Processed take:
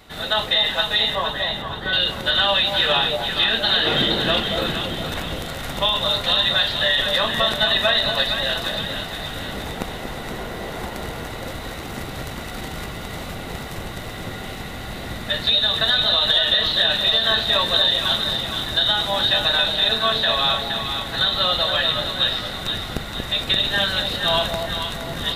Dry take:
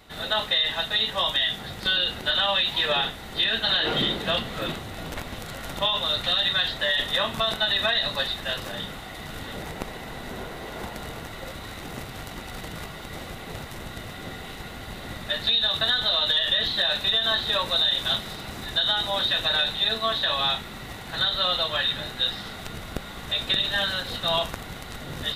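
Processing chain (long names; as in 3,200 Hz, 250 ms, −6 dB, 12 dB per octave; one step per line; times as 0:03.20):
0:01.15–0:01.93: Savitzky-Golay smoothing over 41 samples
on a send: delay that swaps between a low-pass and a high-pass 234 ms, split 810 Hz, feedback 68%, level −3 dB
on the sum: level +4 dB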